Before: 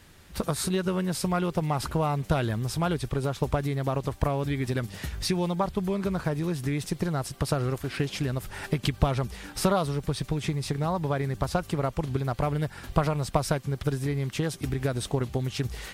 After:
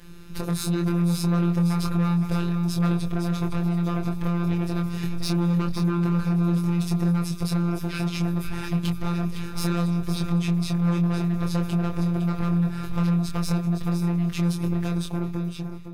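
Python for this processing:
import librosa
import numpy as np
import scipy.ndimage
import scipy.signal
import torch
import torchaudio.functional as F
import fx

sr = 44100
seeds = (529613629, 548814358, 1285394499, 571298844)

p1 = fx.fade_out_tail(x, sr, length_s=1.32)
p2 = fx.low_shelf(p1, sr, hz=120.0, db=11.5)
p3 = np.clip(p2, -10.0 ** (-23.0 / 20.0), 10.0 ** (-23.0 / 20.0))
p4 = fx.graphic_eq_31(p3, sr, hz=(160, 400, 8000), db=(6, 12, -5))
p5 = 10.0 ** (-25.5 / 20.0) * np.tanh(p4 / 10.0 ** (-25.5 / 20.0))
p6 = fx.robotise(p5, sr, hz=172.0)
p7 = fx.doubler(p6, sr, ms=24.0, db=-4)
p8 = p7 + fx.echo_feedback(p7, sr, ms=510, feedback_pct=15, wet_db=-9, dry=0)
y = p8 * librosa.db_to_amplitude(3.0)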